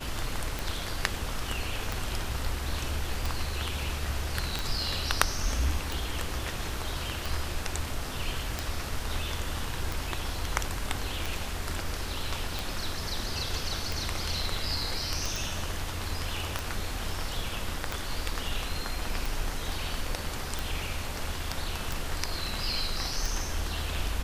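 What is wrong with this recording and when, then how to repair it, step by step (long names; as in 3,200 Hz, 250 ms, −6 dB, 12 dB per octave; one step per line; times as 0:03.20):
scratch tick 45 rpm
0:15.36: click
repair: click removal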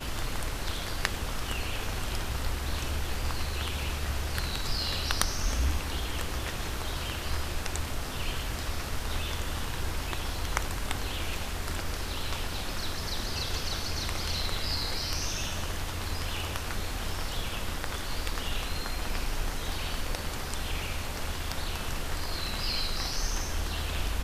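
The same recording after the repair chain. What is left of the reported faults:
none of them is left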